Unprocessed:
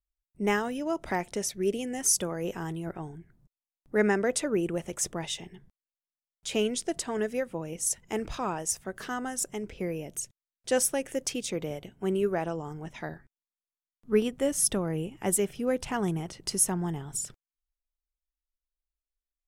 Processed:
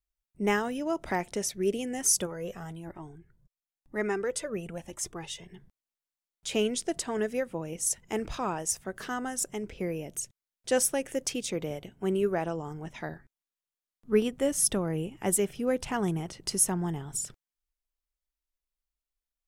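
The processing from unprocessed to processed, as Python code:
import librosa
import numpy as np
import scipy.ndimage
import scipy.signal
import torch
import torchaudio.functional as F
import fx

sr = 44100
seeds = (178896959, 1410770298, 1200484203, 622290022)

y = fx.comb_cascade(x, sr, direction='rising', hz=1.0, at=(2.25, 5.48), fade=0.02)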